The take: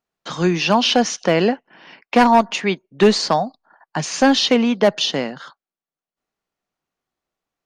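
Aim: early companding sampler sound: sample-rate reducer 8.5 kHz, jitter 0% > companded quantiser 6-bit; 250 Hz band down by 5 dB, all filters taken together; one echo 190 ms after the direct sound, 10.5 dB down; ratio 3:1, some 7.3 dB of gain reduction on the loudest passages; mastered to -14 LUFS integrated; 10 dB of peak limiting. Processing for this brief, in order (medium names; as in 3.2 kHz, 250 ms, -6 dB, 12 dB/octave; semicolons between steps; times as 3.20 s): peaking EQ 250 Hz -6 dB; compression 3:1, threshold -20 dBFS; peak limiter -18.5 dBFS; delay 190 ms -10.5 dB; sample-rate reducer 8.5 kHz, jitter 0%; companded quantiser 6-bit; trim +13.5 dB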